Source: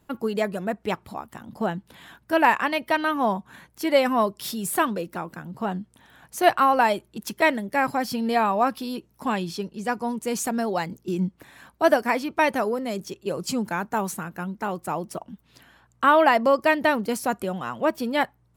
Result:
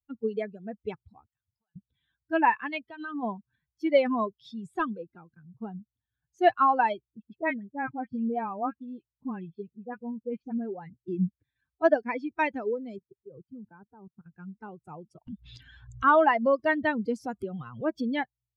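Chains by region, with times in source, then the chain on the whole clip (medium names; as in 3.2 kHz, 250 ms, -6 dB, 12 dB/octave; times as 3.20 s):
1.26–1.76 s: amplifier tone stack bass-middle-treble 10-0-10 + compression 10:1, threshold -46 dBFS
2.78–3.23 s: compression 12:1, threshold -23 dBFS + band-stop 2.1 kHz, Q 9.9
4.26–6.39 s: treble shelf 9.1 kHz -11.5 dB + overload inside the chain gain 14 dB
7.06–11.06 s: high-pass 49 Hz + distance through air 380 m + phase dispersion highs, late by 53 ms, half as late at 1.5 kHz
12.98–14.26 s: low-pass 1.4 kHz + level held to a coarse grid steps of 16 dB
15.27–18.17 s: upward compressor, threshold -20 dBFS + band-stop 2.5 kHz, Q 29 + tape noise reduction on one side only encoder only
whole clip: expander on every frequency bin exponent 2; low-pass 2.5 kHz 12 dB/octave; de-esser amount 80%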